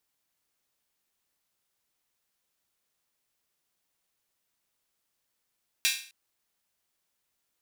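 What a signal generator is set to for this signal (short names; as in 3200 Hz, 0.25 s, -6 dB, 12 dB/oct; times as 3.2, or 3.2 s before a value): open hi-hat length 0.26 s, high-pass 2500 Hz, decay 0.44 s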